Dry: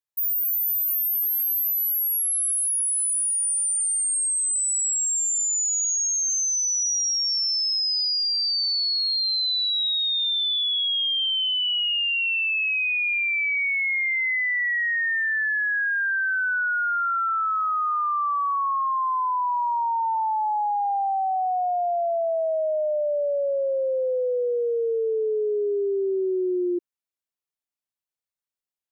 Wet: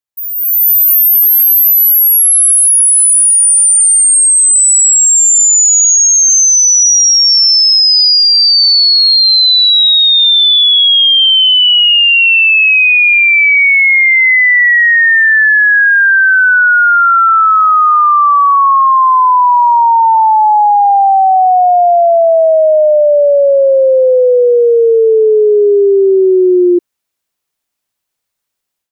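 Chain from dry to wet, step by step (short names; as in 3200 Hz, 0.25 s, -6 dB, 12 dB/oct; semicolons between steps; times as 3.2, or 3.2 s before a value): AGC gain up to 15 dB; gain +2 dB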